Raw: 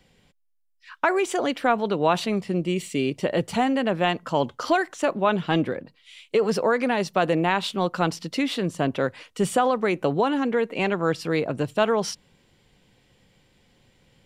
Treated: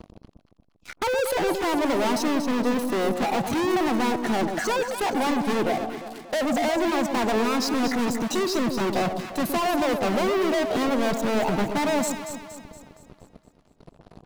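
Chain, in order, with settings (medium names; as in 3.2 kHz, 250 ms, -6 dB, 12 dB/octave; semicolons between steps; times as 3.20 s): reverb removal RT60 0.69 s; spectral gate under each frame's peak -25 dB strong; FFT filter 130 Hz 0 dB, 480 Hz -6 dB, 1.3 kHz -18 dB; in parallel at +2 dB: compression, threshold -37 dBFS, peak gain reduction 15 dB; on the sum: pitch shift +5.5 st; waveshaping leveller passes 5; saturation -23 dBFS, distortion -15 dB; on a send: echo whose repeats swap between lows and highs 117 ms, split 910 Hz, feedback 69%, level -5 dB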